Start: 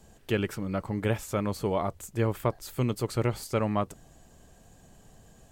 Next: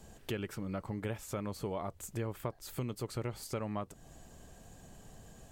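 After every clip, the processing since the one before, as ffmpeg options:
-af "acompressor=threshold=-39dB:ratio=3,volume=1dB"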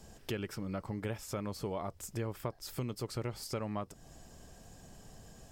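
-af "equalizer=f=5.2k:t=o:w=0.22:g=9"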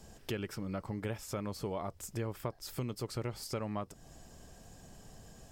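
-af anull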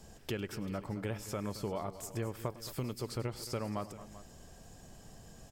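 -af "aecho=1:1:103|221|389:0.119|0.188|0.15"

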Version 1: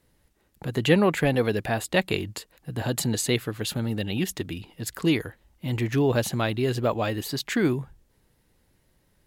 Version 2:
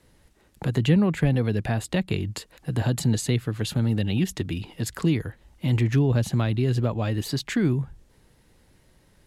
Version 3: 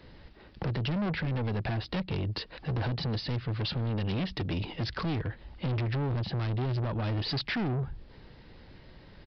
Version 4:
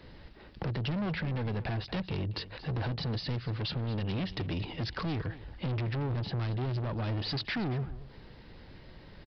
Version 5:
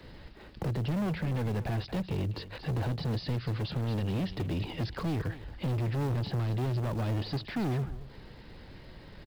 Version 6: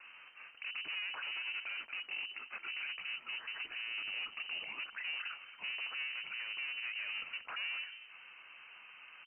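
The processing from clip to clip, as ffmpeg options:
-filter_complex "[0:a]lowpass=11k,acrossover=split=210[a][b];[b]acompressor=threshold=-39dB:ratio=3[c];[a][c]amix=inputs=2:normalize=0,volume=7dB"
-af "alimiter=limit=-20dB:level=0:latency=1:release=425,aresample=11025,asoftclip=type=tanh:threshold=-35.5dB,aresample=44100,volume=7.5dB"
-filter_complex "[0:a]asplit=2[a][b];[b]acompressor=threshold=-38dB:ratio=6,volume=-0.5dB[c];[a][c]amix=inputs=2:normalize=0,aecho=1:1:228:0.158,volume=-5dB"
-filter_complex "[0:a]acrossover=split=290|900[a][b][c];[b]acrusher=bits=3:mode=log:mix=0:aa=0.000001[d];[c]alimiter=level_in=13.5dB:limit=-24dB:level=0:latency=1:release=49,volume=-13.5dB[e];[a][d][e]amix=inputs=3:normalize=0,volume=2dB"
-filter_complex "[0:a]acrossover=split=310 2100:gain=0.0794 1 0.141[a][b][c];[a][b][c]amix=inputs=3:normalize=0,alimiter=level_in=11dB:limit=-24dB:level=0:latency=1:release=39,volume=-11dB,lowpass=f=2.6k:t=q:w=0.5098,lowpass=f=2.6k:t=q:w=0.6013,lowpass=f=2.6k:t=q:w=0.9,lowpass=f=2.6k:t=q:w=2.563,afreqshift=-3100,volume=2dB"

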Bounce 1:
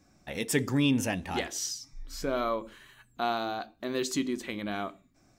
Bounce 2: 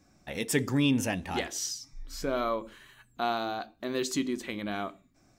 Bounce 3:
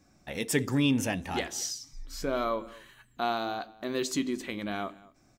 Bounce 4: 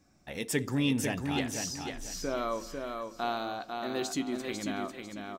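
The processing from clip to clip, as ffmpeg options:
-af anull
-filter_complex "[0:a]asplit=2[a][b];[b]adelay=221.6,volume=-21dB,highshelf=f=4k:g=-4.99[c];[a][c]amix=inputs=2:normalize=0"
-af "aecho=1:1:497|994|1491|1988:0.562|0.163|0.0473|0.0137,volume=-3dB"

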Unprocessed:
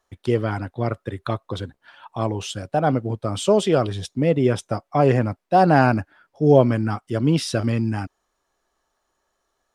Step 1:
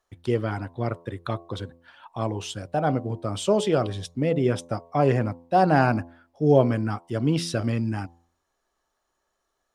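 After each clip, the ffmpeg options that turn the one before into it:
-af "bandreject=f=85.01:t=h:w=4,bandreject=f=170.02:t=h:w=4,bandreject=f=255.03:t=h:w=4,bandreject=f=340.04:t=h:w=4,bandreject=f=425.05:t=h:w=4,bandreject=f=510.06:t=h:w=4,bandreject=f=595.07:t=h:w=4,bandreject=f=680.08:t=h:w=4,bandreject=f=765.09:t=h:w=4,bandreject=f=850.1:t=h:w=4,bandreject=f=935.11:t=h:w=4,bandreject=f=1.02012k:t=h:w=4,bandreject=f=1.10513k:t=h:w=4,volume=-3.5dB"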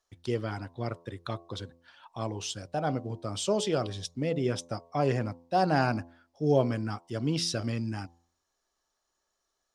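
-af "equalizer=f=5.4k:w=1:g=9.5,volume=-6.5dB"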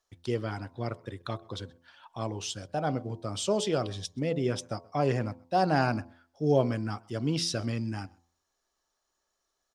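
-filter_complex "[0:a]asplit=2[a][b];[b]adelay=128.3,volume=-26dB,highshelf=f=4k:g=-2.89[c];[a][c]amix=inputs=2:normalize=0"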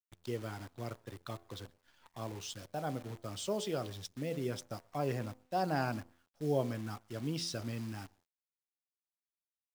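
-af "acrusher=bits=8:dc=4:mix=0:aa=0.000001,volume=-8dB"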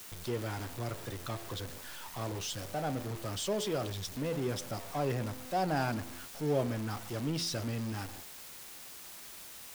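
-af "aeval=exprs='val(0)+0.5*0.015*sgn(val(0))':c=same"

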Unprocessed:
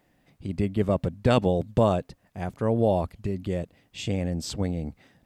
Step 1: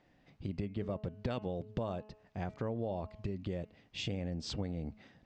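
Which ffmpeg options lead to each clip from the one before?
-af "lowpass=f=5.8k:w=0.5412,lowpass=f=5.8k:w=1.3066,bandreject=f=213.6:t=h:w=4,bandreject=f=427.2:t=h:w=4,bandreject=f=640.8:t=h:w=4,bandreject=f=854.4:t=h:w=4,bandreject=f=1.068k:t=h:w=4,bandreject=f=1.2816k:t=h:w=4,bandreject=f=1.4952k:t=h:w=4,bandreject=f=1.7088k:t=h:w=4,bandreject=f=1.9224k:t=h:w=4,bandreject=f=2.136k:t=h:w=4,bandreject=f=2.3496k:t=h:w=4,bandreject=f=2.5632k:t=h:w=4,bandreject=f=2.7768k:t=h:w=4,bandreject=f=2.9904k:t=h:w=4,acompressor=threshold=-33dB:ratio=5,volume=-2dB"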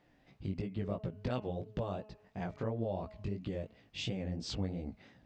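-af "flanger=delay=15.5:depth=6:speed=2.9,volume=3dB"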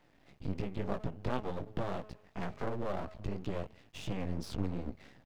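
-filter_complex "[0:a]acrossover=split=160|1400[a][b][c];[a]aecho=1:1:160:0.075[d];[c]alimiter=level_in=17dB:limit=-24dB:level=0:latency=1:release=100,volume=-17dB[e];[d][b][e]amix=inputs=3:normalize=0,aeval=exprs='max(val(0),0)':c=same,volume=6dB"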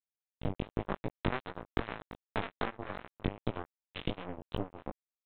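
-af "acompressor=threshold=-42dB:ratio=16,aresample=8000,acrusher=bits=5:mix=0:aa=0.5,aresample=44100,flanger=delay=17:depth=4:speed=2.6,volume=18dB"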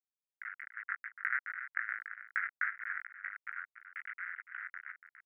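-af "acrusher=bits=5:mix=0:aa=0.000001,asuperpass=centerf=1700:order=8:qfactor=2.4,aecho=1:1:287:0.266,volume=10dB"

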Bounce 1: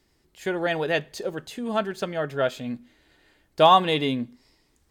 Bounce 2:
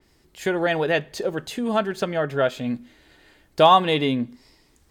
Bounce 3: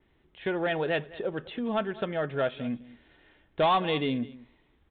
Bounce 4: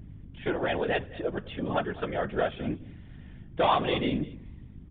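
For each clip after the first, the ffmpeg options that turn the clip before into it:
-filter_complex "[0:a]asplit=2[a][b];[b]acompressor=threshold=-29dB:ratio=6,volume=0.5dB[c];[a][c]amix=inputs=2:normalize=0,adynamicequalizer=threshold=0.0126:dfrequency=3300:dqfactor=0.7:tfrequency=3300:tqfactor=0.7:attack=5:release=100:ratio=0.375:range=3:mode=cutabove:tftype=highshelf"
-af "aecho=1:1:206:0.0944,aresample=8000,asoftclip=type=tanh:threshold=-12.5dB,aresample=44100,volume=-5.5dB"
-af "aeval=exprs='val(0)+0.00708*(sin(2*PI*50*n/s)+sin(2*PI*2*50*n/s)/2+sin(2*PI*3*50*n/s)/3+sin(2*PI*4*50*n/s)/4+sin(2*PI*5*50*n/s)/5)':c=same,afftfilt=real='hypot(re,im)*cos(2*PI*random(0))':imag='hypot(re,im)*sin(2*PI*random(1))':win_size=512:overlap=0.75,aresample=8000,aresample=44100,volume=6dB"

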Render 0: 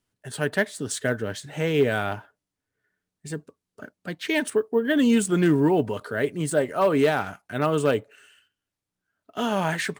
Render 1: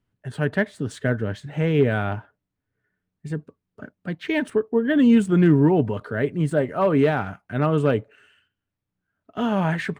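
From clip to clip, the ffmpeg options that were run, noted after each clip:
-af "bass=f=250:g=8,treble=f=4k:g=-14"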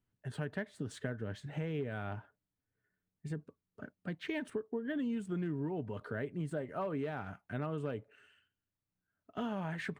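-af "acompressor=threshold=-26dB:ratio=6,volume=-8.5dB"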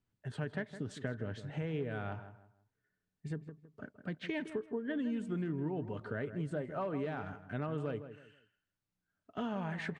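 -filter_complex "[0:a]lowpass=7.6k,asplit=2[a][b];[b]adelay=161,lowpass=f=1.9k:p=1,volume=-11dB,asplit=2[c][d];[d]adelay=161,lowpass=f=1.9k:p=1,volume=0.3,asplit=2[e][f];[f]adelay=161,lowpass=f=1.9k:p=1,volume=0.3[g];[c][e][g]amix=inputs=3:normalize=0[h];[a][h]amix=inputs=2:normalize=0"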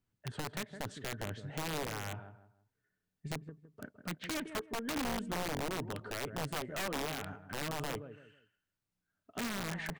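-af "aeval=exprs='0.0794*(cos(1*acos(clip(val(0)/0.0794,-1,1)))-cos(1*PI/2))+0.002*(cos(6*acos(clip(val(0)/0.0794,-1,1)))-cos(6*PI/2))':c=same,aeval=exprs='(mod(33.5*val(0)+1,2)-1)/33.5':c=same"

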